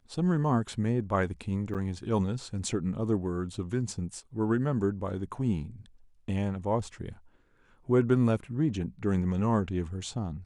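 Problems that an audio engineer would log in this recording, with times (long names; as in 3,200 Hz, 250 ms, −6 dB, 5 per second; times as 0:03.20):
0:01.74–0:01.75: drop-out 7.4 ms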